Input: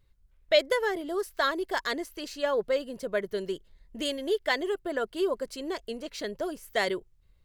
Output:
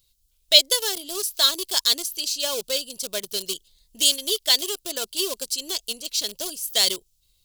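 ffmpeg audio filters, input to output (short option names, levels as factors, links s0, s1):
-filter_complex "[0:a]asplit=2[s0][s1];[s1]aeval=exprs='val(0)*gte(abs(val(0)),0.0376)':c=same,volume=0.501[s2];[s0][s2]amix=inputs=2:normalize=0,aexciter=amount=10.6:drive=7.4:freq=2900,volume=0.447"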